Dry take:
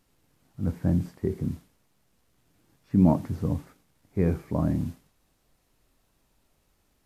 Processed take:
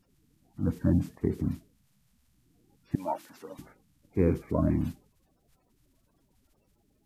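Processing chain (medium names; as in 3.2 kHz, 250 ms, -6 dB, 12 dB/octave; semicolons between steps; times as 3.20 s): coarse spectral quantiser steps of 30 dB; 2.95–3.59 s: high-pass 870 Hz 12 dB/octave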